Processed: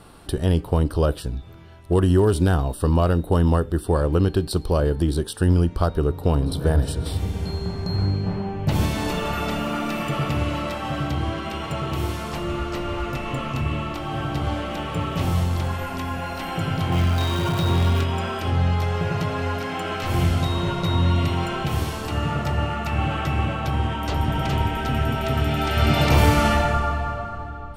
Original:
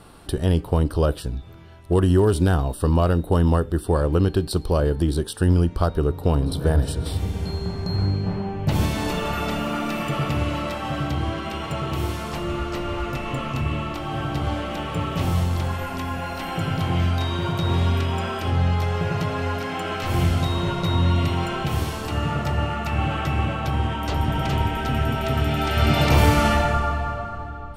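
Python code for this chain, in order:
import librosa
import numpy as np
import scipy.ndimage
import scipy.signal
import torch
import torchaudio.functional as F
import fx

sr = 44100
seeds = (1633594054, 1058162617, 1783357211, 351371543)

y = fx.zero_step(x, sr, step_db=-28.5, at=(16.92, 18.04))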